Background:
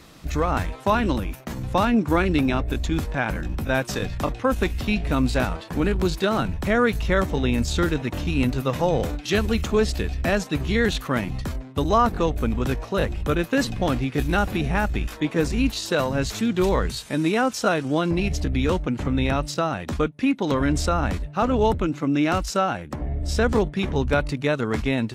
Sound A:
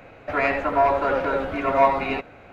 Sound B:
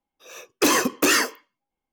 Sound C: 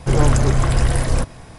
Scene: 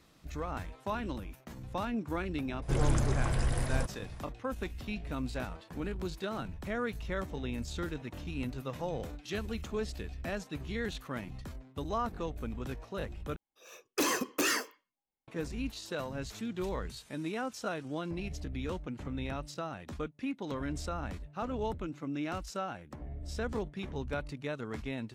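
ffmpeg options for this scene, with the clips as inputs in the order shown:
ffmpeg -i bed.wav -i cue0.wav -i cue1.wav -i cue2.wav -filter_complex "[0:a]volume=-15dB,asplit=2[link_01][link_02];[link_01]atrim=end=13.364[link_03];[2:a]atrim=end=1.92,asetpts=PTS-STARTPTS,volume=-11dB[link_04];[link_02]atrim=start=15.276[link_05];[3:a]atrim=end=1.58,asetpts=PTS-STARTPTS,volume=-13.5dB,afade=type=in:duration=0.004:curve=hsin,afade=type=out:start_time=1.576:duration=0.004:curve=hsin,adelay=2620[link_06];[link_03][link_04]acrossfade=duration=0.004:curve1=hsin:curve2=hsin[link_07];[link_07][link_05]acrossfade=duration=0.004:curve1=hsin:curve2=hsin[link_08];[link_08][link_06]amix=inputs=2:normalize=0" out.wav

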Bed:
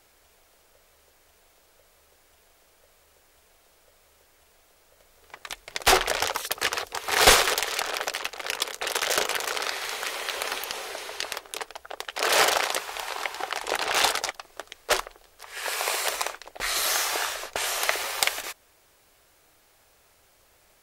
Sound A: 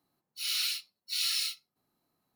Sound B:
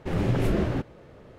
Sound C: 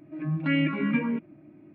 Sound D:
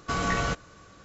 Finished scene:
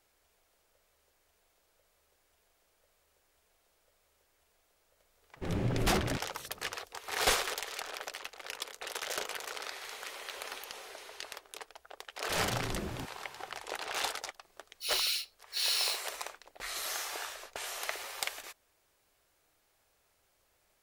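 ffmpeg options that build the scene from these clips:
ffmpeg -i bed.wav -i cue0.wav -i cue1.wav -filter_complex "[2:a]asplit=2[link_01][link_02];[0:a]volume=-12dB[link_03];[link_01]atrim=end=1.38,asetpts=PTS-STARTPTS,volume=-7.5dB,afade=type=in:duration=0.004:curve=hsin,afade=type=out:start_time=1.376:duration=0.004:curve=hsin,adelay=5360[link_04];[link_02]atrim=end=1.38,asetpts=PTS-STARTPTS,volume=-14dB,afade=type=in:duration=0.004:curve=hsin,afade=type=out:start_time=1.376:duration=0.004:curve=hsin,adelay=12240[link_05];[1:a]atrim=end=2.35,asetpts=PTS-STARTPTS,volume=-0.5dB,afade=type=in:duration=0.004:curve=hsin,afade=type=out:start_time=2.346:duration=0.004:curve=hsin,adelay=636804S[link_06];[link_03][link_04][link_05][link_06]amix=inputs=4:normalize=0" out.wav

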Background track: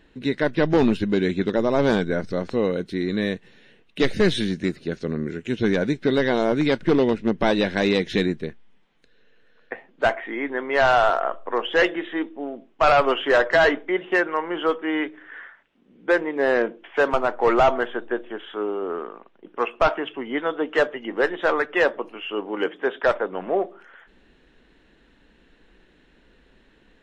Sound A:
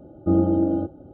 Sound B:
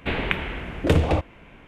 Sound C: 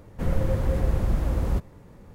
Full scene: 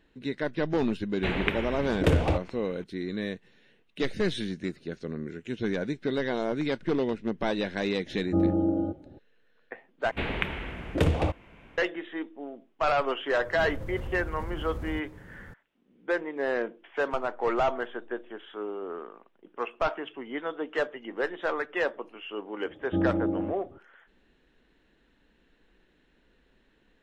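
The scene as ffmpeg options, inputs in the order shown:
ffmpeg -i bed.wav -i cue0.wav -i cue1.wav -i cue2.wav -filter_complex "[2:a]asplit=2[link_01][link_02];[1:a]asplit=2[link_03][link_04];[0:a]volume=-8.5dB[link_05];[3:a]acompressor=threshold=-32dB:ratio=6:attack=3.2:release=140:knee=1:detection=peak[link_06];[link_05]asplit=2[link_07][link_08];[link_07]atrim=end=10.114[link_09];[link_02]atrim=end=1.67,asetpts=PTS-STARTPTS,volume=-5dB[link_10];[link_08]atrim=start=11.776[link_11];[link_01]atrim=end=1.67,asetpts=PTS-STARTPTS,volume=-4dB,afade=type=in:duration=0.004:curve=hsin,afade=type=out:start_time=1.666:duration=0.004:curve=hsin,adelay=1170[link_12];[link_03]atrim=end=1.13,asetpts=PTS-STARTPTS,volume=-5dB,afade=type=in:duration=0.004:curve=hsin,afade=type=out:start_time=1.126:duration=0.004:curve=hsin,adelay=8060[link_13];[link_06]atrim=end=2.14,asetpts=PTS-STARTPTS,volume=-0.5dB,afade=type=in:duration=0.004:curve=hsin,afade=type=out:start_time=2.136:duration=0.004:curve=hsin,adelay=13400[link_14];[link_04]atrim=end=1.13,asetpts=PTS-STARTPTS,volume=-7.5dB,afade=type=in:duration=0.004:curve=hsin,afade=type=out:start_time=1.126:duration=0.004:curve=hsin,adelay=22660[link_15];[link_09][link_10]acrossfade=duration=0.004:curve1=hsin:curve2=hsin[link_16];[link_16][link_11]acrossfade=duration=0.004:curve1=hsin:curve2=hsin[link_17];[link_17][link_12][link_13][link_14][link_15]amix=inputs=5:normalize=0" out.wav

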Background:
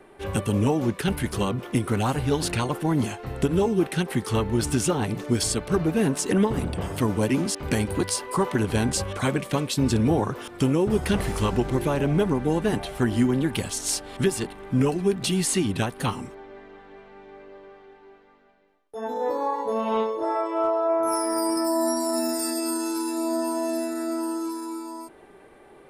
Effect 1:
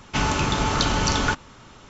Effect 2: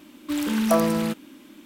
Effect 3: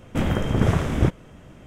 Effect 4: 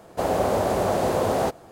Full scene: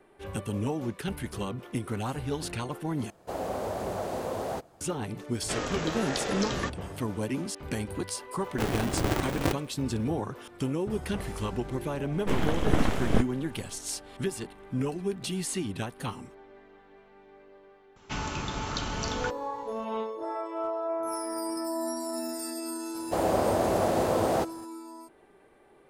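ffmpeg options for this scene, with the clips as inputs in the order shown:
ffmpeg -i bed.wav -i cue0.wav -i cue1.wav -i cue2.wav -i cue3.wav -filter_complex "[4:a]asplit=2[link_01][link_02];[1:a]asplit=2[link_03][link_04];[3:a]asplit=2[link_05][link_06];[0:a]volume=-8.5dB[link_07];[link_01]aphaser=in_gain=1:out_gain=1:delay=4.5:decay=0.22:speed=1.3:type=triangular[link_08];[link_03]aeval=exprs='val(0)*sin(2*PI*420*n/s+420*0.25/1.2*sin(2*PI*1.2*n/s))':channel_layout=same[link_09];[link_05]aeval=exprs='val(0)*sgn(sin(2*PI*210*n/s))':channel_layout=same[link_10];[link_06]aeval=exprs='abs(val(0))':channel_layout=same[link_11];[link_07]asplit=2[link_12][link_13];[link_12]atrim=end=3.104[link_14];[link_08]atrim=end=1.71,asetpts=PTS-STARTPTS,volume=-10.5dB[link_15];[link_13]atrim=start=4.806[link_16];[link_09]atrim=end=1.89,asetpts=PTS-STARTPTS,volume=-7.5dB,afade=type=in:duration=0.004:curve=hsin,afade=type=out:start_time=1.886:duration=0.004:curve=hsin,adelay=5350[link_17];[link_10]atrim=end=1.66,asetpts=PTS-STARTPTS,volume=-8.5dB,afade=type=in:duration=0.004:curve=hsin,afade=type=out:start_time=1.656:duration=0.004:curve=hsin,adelay=8430[link_18];[link_11]atrim=end=1.66,asetpts=PTS-STARTPTS,volume=-2.5dB,afade=type=in:duration=0.004:curve=hsin,afade=type=out:start_time=1.656:duration=0.004:curve=hsin,adelay=12120[link_19];[link_04]atrim=end=1.89,asetpts=PTS-STARTPTS,volume=-11dB,afade=type=in:duration=0.004:curve=hsin,afade=type=out:start_time=1.886:duration=0.004:curve=hsin,adelay=792036S[link_20];[link_02]atrim=end=1.71,asetpts=PTS-STARTPTS,volume=-3.5dB,afade=type=in:duration=0.004:curve=hsin,afade=type=out:start_time=1.706:duration=0.004:curve=hsin,adelay=22940[link_21];[link_14][link_15]acrossfade=duration=0.004:curve1=hsin:curve2=hsin[link_22];[link_22][link_16]acrossfade=duration=0.004:curve1=hsin:curve2=hsin[link_23];[link_23][link_17][link_18][link_19][link_20][link_21]amix=inputs=6:normalize=0" out.wav

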